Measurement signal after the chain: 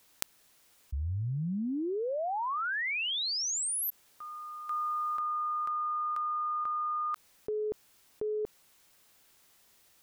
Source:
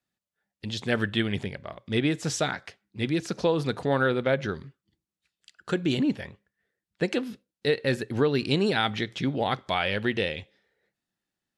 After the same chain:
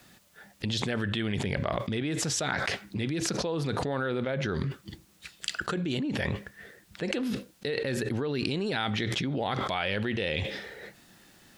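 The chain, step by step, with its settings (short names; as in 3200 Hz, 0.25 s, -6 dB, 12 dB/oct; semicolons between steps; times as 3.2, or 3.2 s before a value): fast leveller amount 100%; gain -10.5 dB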